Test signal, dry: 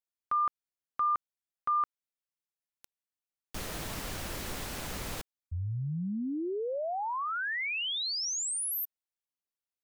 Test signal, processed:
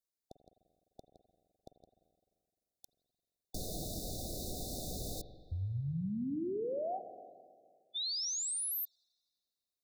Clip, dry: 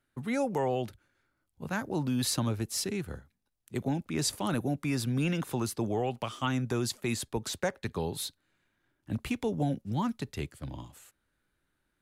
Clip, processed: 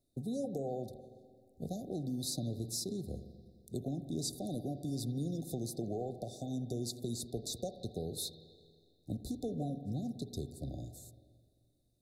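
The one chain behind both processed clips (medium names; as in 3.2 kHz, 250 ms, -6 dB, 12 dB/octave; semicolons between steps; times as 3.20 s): compression 4:1, threshold -37 dBFS; brick-wall FIR band-stop 780–3500 Hz; spring tank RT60 2 s, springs 43/50 ms, chirp 40 ms, DRR 9.5 dB; trim +1 dB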